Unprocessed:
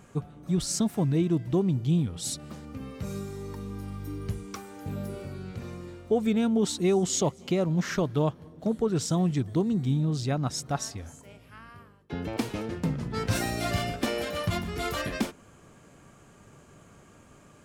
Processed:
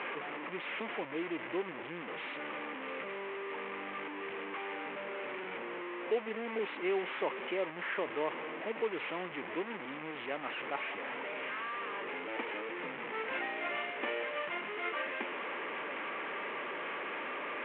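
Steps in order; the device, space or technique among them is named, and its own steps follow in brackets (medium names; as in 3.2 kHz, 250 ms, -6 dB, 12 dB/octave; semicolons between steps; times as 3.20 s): 5.57–6.59 s: low-pass 1 kHz 24 dB/octave; digital answering machine (band-pass 310–3400 Hz; one-bit delta coder 16 kbps, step -28.5 dBFS; cabinet simulation 450–3100 Hz, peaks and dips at 700 Hz -7 dB, 1.4 kHz -4 dB, 2.1 kHz +3 dB); trim -2 dB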